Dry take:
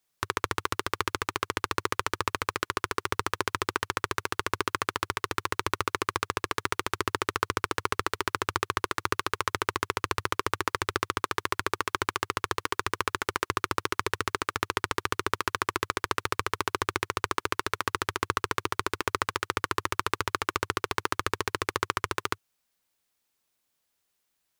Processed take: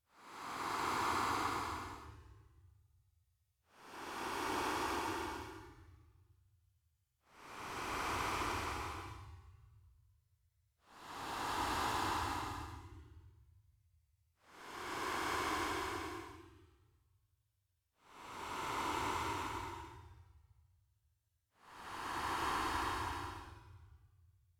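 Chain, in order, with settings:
source passing by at 0:05.33, 52 m/s, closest 6.6 metres
extreme stretch with random phases 44×, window 0.05 s, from 0:07.69
level +12.5 dB

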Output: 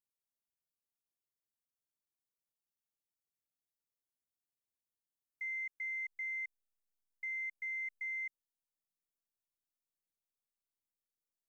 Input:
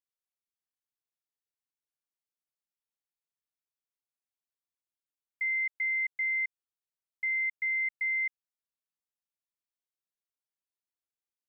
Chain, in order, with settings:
parametric band 2,000 Hz −12 dB 2.6 octaves
in parallel at −10 dB: slack as between gear wheels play −51.5 dBFS

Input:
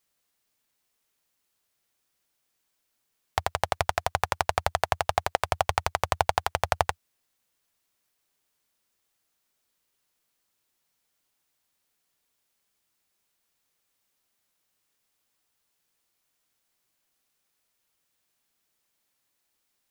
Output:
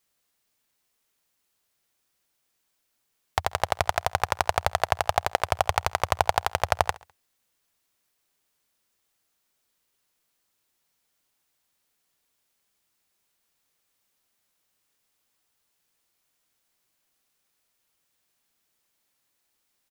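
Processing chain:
repeating echo 68 ms, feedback 46%, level −21.5 dB
level +1.5 dB

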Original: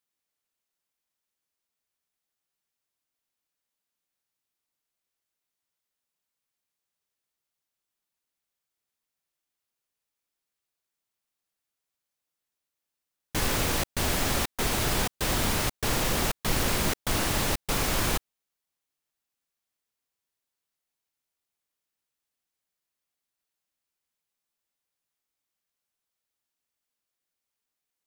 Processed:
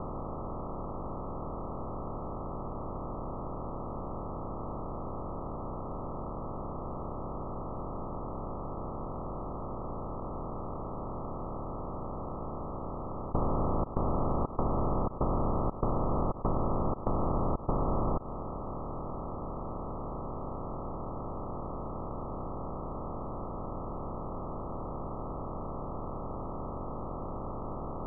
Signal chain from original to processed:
compressor on every frequency bin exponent 0.2
Chebyshev low-pass filter 1,300 Hz, order 10
downward compressor 6 to 1, threshold −25 dBFS, peak gain reduction 7 dB

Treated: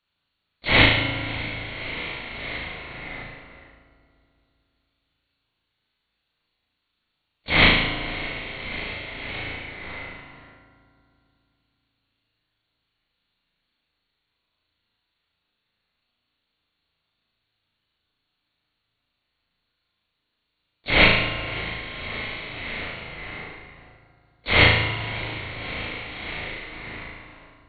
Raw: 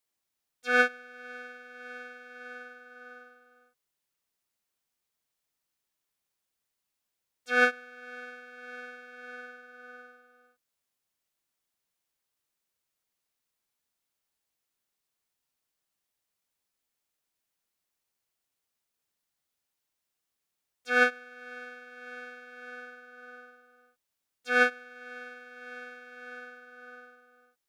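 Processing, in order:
high-shelf EQ 2,300 Hz +9 dB
in parallel at −3 dB: downward compressor, threshold −38 dBFS, peak gain reduction 21 dB
on the sum: linear-prediction vocoder at 8 kHz whisper
formants moved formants +6 semitones
on a send: flutter between parallel walls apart 6.3 metres, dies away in 0.78 s
on the sum: feedback delay network reverb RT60 2.6 s, low-frequency decay 1.3×, high-frequency decay 0.55×, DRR 7.5 dB
level +2 dB

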